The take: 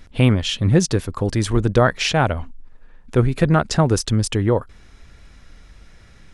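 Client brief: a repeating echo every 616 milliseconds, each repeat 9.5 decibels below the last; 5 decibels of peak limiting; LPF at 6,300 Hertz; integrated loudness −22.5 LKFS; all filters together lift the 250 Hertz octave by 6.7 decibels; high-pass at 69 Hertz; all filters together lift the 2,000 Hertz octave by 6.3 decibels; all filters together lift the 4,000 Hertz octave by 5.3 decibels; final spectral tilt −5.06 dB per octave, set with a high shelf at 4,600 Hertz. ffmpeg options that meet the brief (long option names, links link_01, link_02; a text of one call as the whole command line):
ffmpeg -i in.wav -af "highpass=69,lowpass=6300,equalizer=frequency=250:width_type=o:gain=9,equalizer=frequency=2000:width_type=o:gain=7.5,equalizer=frequency=4000:width_type=o:gain=7.5,highshelf=frequency=4600:gain=-5.5,alimiter=limit=-3.5dB:level=0:latency=1,aecho=1:1:616|1232|1848|2464:0.335|0.111|0.0365|0.012,volume=-5.5dB" out.wav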